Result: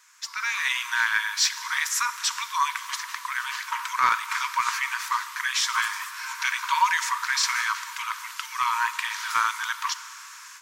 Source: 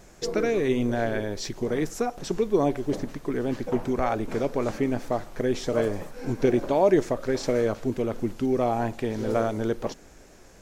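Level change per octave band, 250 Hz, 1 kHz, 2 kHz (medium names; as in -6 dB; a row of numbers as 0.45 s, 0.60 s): under -35 dB, +7.0 dB, +13.5 dB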